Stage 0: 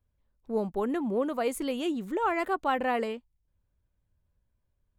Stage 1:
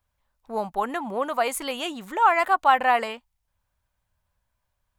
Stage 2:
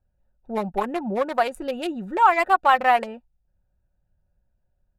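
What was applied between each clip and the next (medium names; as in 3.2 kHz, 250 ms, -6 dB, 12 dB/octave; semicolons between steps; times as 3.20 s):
resonant low shelf 560 Hz -11 dB, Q 1.5; trim +8.5 dB
local Wiener filter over 41 samples; comb 5.5 ms, depth 34%; in parallel at +2 dB: compression, threshold -30 dBFS, peak gain reduction 16.5 dB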